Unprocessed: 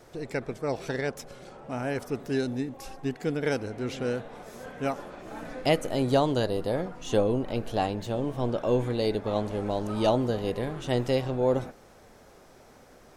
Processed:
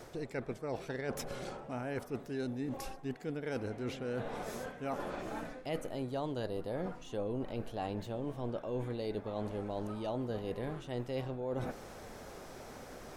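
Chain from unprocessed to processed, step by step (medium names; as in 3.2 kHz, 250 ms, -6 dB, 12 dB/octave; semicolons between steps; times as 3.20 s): dynamic bell 6.3 kHz, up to -5 dB, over -51 dBFS, Q 0.79; reverse; compression 6:1, threshold -41 dBFS, peak gain reduction 21 dB; reverse; trim +5 dB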